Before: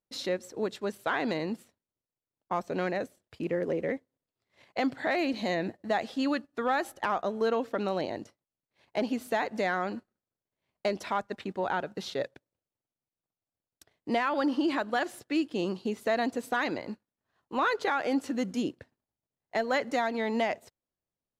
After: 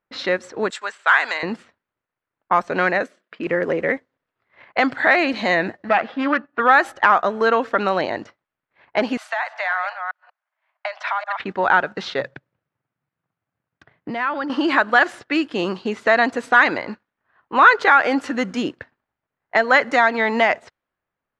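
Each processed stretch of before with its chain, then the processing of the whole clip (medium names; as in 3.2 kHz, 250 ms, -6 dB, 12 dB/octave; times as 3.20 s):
0.70–1.43 s: high-pass 960 Hz + peaking EQ 7.7 kHz +15 dB 0.39 oct
3.03–3.47 s: brick-wall FIR high-pass 170 Hz + peaking EQ 830 Hz -11.5 dB 0.23 oct
5.89–6.60 s: self-modulated delay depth 0.15 ms + band-pass 120–2200 Hz + band-stop 410 Hz, Q 10
9.17–11.40 s: chunks repeated in reverse 188 ms, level -11 dB + steep high-pass 610 Hz 72 dB/octave + compression 12:1, threshold -33 dBFS
12.20–14.50 s: high-pass 63 Hz + peaking EQ 140 Hz +13.5 dB 1.4 oct + compression, threshold -33 dBFS
whole clip: low-pass 8.6 kHz 12 dB/octave; level-controlled noise filter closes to 2.3 kHz, open at -27 dBFS; peaking EQ 1.5 kHz +13 dB 1.9 oct; trim +5.5 dB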